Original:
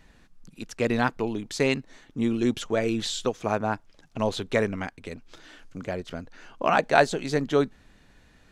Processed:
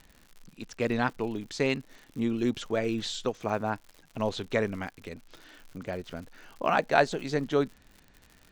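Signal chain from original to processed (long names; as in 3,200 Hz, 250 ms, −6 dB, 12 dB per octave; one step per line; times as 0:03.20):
low-pass filter 7,000 Hz 12 dB per octave
surface crackle 110 per second −37 dBFS
level −3.5 dB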